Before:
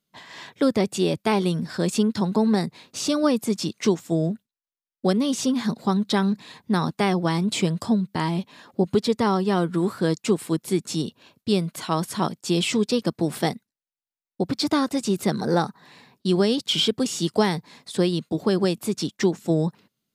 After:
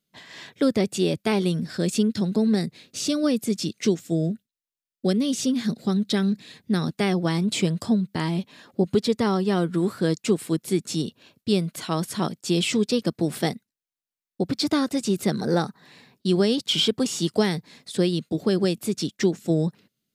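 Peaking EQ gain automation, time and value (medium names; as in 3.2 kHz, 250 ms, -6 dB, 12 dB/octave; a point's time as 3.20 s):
peaking EQ 960 Hz 0.76 oct
1.46 s -7.5 dB
2.12 s -15 dB
6.71 s -15 dB
7.24 s -6 dB
16.35 s -6 dB
17.15 s +2 dB
17.42 s -8.5 dB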